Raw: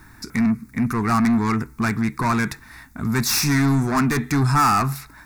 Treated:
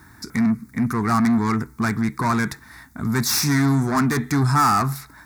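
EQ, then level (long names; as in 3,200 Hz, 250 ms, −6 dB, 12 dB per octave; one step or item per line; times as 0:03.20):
high-pass filter 59 Hz
parametric band 2,600 Hz −8.5 dB 0.29 octaves
0.0 dB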